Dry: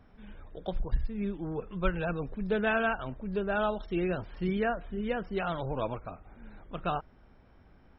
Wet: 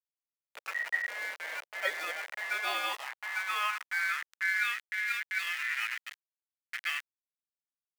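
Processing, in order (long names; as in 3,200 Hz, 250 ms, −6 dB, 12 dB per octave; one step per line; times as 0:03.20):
bit reduction 6 bits
ring modulation 1,900 Hz
high-pass filter sweep 560 Hz → 1,800 Hz, 0:02.19–0:04.89
level −3.5 dB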